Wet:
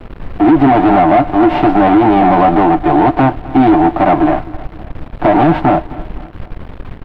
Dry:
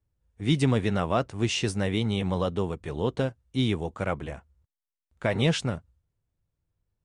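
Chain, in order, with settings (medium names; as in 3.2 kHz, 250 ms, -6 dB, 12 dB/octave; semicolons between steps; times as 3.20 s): formants flattened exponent 0.3; two resonant band-passes 480 Hz, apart 1.1 oct; comb 6.7 ms, depth 56%; compression 2:1, threshold -39 dBFS, peak gain reduction 9 dB; added noise brown -62 dBFS; bit crusher 12-bit; waveshaping leveller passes 3; distance through air 470 m; on a send: feedback delay 259 ms, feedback 49%, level -22 dB; on the sum: loudness maximiser +31 dB; trim -2.5 dB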